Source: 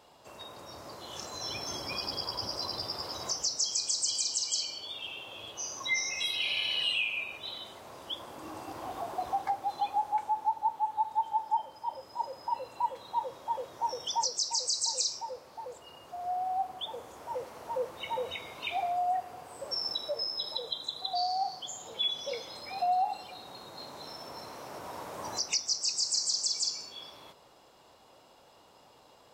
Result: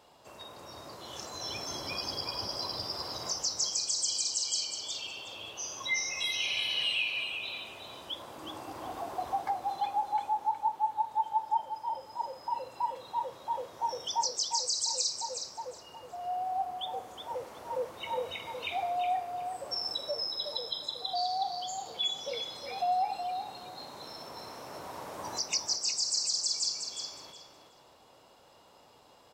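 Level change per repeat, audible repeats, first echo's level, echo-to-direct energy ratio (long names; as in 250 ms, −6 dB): −15.0 dB, 2, −7.5 dB, −7.5 dB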